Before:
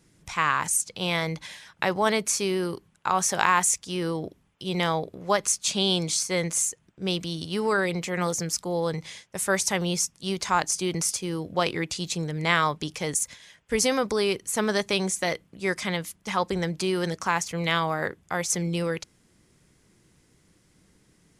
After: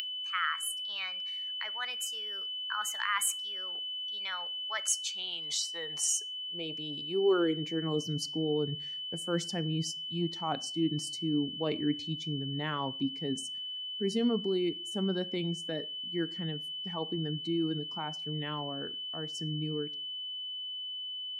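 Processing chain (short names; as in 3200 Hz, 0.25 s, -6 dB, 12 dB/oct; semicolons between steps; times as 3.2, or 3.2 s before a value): per-bin expansion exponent 1.5; Doppler pass-by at 5.01, 40 m/s, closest 19 m; tilt -3.5 dB/oct; reverse; compressor 8:1, threshold -45 dBFS, peak gain reduction 25 dB; reverse; whine 3000 Hz -54 dBFS; high-pass sweep 1600 Hz -> 240 Hz, 4.82–8.08; in parallel at +3 dB: upward compressor, threshold -48 dBFS; on the sum: high shelf 9400 Hz +9 dB; reverb RT60 0.40 s, pre-delay 7 ms, DRR 15.5 dB; gain +8 dB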